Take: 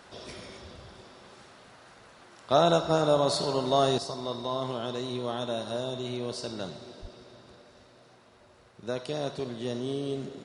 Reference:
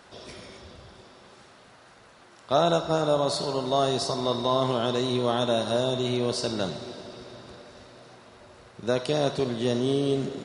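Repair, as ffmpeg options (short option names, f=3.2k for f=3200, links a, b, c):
-filter_complex "[0:a]asplit=3[a][b][c];[a]afade=t=out:st=7.01:d=0.02[d];[b]highpass=f=140:w=0.5412,highpass=f=140:w=1.3066,afade=t=in:st=7.01:d=0.02,afade=t=out:st=7.13:d=0.02[e];[c]afade=t=in:st=7.13:d=0.02[f];[d][e][f]amix=inputs=3:normalize=0,asetnsamples=n=441:p=0,asendcmd='3.98 volume volume 7.5dB',volume=0dB"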